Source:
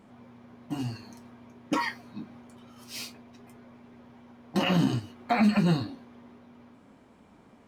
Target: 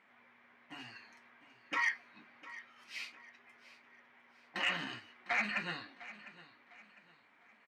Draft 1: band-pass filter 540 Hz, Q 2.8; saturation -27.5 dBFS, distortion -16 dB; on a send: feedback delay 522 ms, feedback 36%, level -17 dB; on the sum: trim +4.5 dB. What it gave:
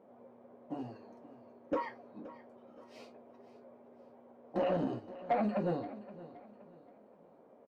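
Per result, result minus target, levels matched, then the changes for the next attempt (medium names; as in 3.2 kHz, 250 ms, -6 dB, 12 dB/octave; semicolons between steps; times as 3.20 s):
2 kHz band -16.5 dB; echo 181 ms early
change: band-pass filter 2 kHz, Q 2.8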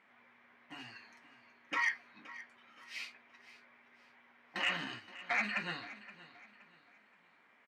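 echo 181 ms early
change: feedback delay 703 ms, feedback 36%, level -17 dB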